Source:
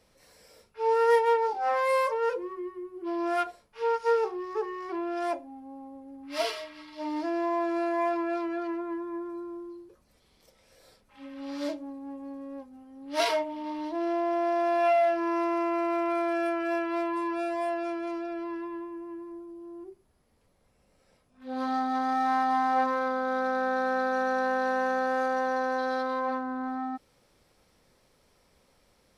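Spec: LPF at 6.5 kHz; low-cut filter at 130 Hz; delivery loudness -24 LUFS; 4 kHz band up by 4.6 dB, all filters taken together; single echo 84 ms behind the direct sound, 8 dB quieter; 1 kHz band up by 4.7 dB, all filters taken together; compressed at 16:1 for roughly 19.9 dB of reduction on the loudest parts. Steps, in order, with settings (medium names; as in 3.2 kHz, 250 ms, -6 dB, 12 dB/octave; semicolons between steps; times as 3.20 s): high-pass 130 Hz; low-pass 6.5 kHz; peaking EQ 1 kHz +6 dB; peaking EQ 4 kHz +6 dB; compression 16:1, threshold -36 dBFS; delay 84 ms -8 dB; trim +16 dB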